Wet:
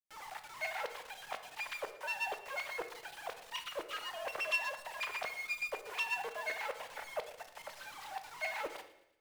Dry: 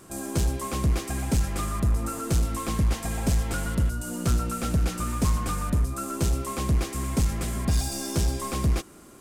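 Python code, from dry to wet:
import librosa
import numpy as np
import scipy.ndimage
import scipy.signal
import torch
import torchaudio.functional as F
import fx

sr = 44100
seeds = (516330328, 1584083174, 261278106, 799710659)

y = fx.sine_speech(x, sr)
y = np.abs(y)
y = fx.ladder_highpass(y, sr, hz=450.0, resonance_pct=40)
y = fx.quant_dither(y, sr, seeds[0], bits=8, dither='none')
y = fx.echo_wet_highpass(y, sr, ms=114, feedback_pct=46, hz=1700.0, wet_db=-16.5)
y = fx.room_shoebox(y, sr, seeds[1], volume_m3=250.0, walls='mixed', distance_m=0.46)
y = fx.doppler_dist(y, sr, depth_ms=0.21)
y = y * 10.0 ** (-4.0 / 20.0)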